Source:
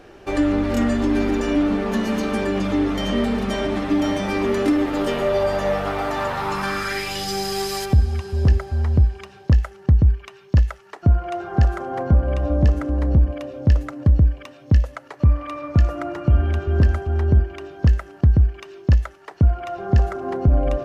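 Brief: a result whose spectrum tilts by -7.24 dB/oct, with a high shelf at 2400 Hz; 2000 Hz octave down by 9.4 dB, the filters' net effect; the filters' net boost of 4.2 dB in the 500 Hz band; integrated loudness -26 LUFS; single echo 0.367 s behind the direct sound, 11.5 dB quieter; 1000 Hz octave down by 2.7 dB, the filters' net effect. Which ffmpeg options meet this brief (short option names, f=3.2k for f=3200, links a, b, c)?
-af "equalizer=f=500:t=o:g=7.5,equalizer=f=1k:t=o:g=-4.5,equalizer=f=2k:t=o:g=-8.5,highshelf=f=2.4k:g=-5.5,aecho=1:1:367:0.266,volume=-6dB"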